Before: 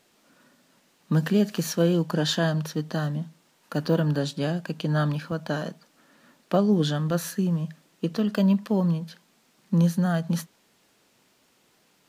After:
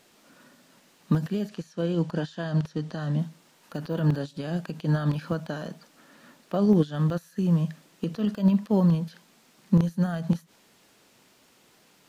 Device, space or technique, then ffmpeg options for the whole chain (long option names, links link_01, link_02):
de-esser from a sidechain: -filter_complex "[0:a]asplit=2[link_01][link_02];[link_02]highpass=6900,apad=whole_len=533138[link_03];[link_01][link_03]sidechaincompress=threshold=-59dB:ratio=12:attack=2.9:release=59,asettb=1/sr,asplit=3[link_04][link_05][link_06];[link_04]atrim=end=1.494[link_07];[link_05]atrim=start=1.49:end=3.19,asetpts=PTS-STARTPTS,afade=type=in:duration=0.004:curve=qsin,afade=type=out:start_time=1.696:duration=0.004:curve=qsin,lowpass=8200[link_08];[link_06]atrim=start=3.186[link_09];[link_07][link_08]acrossfade=duration=0.004:curve1=hsin:curve2=qsin[link_10];[link_10][link_09]acrossfade=duration=0.004:curve1=qsin:curve2=hsin,volume=4dB"